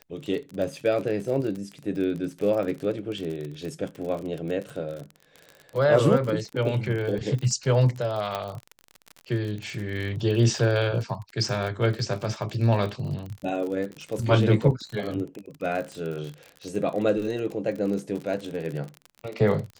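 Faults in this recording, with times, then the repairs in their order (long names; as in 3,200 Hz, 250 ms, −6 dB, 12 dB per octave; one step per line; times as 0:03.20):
surface crackle 42 per second −31 dBFS
0:08.35: click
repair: click removal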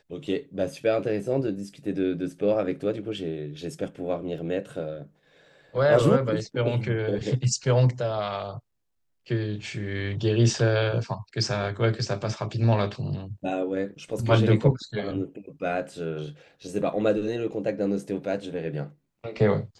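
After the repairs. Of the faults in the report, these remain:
0:08.35: click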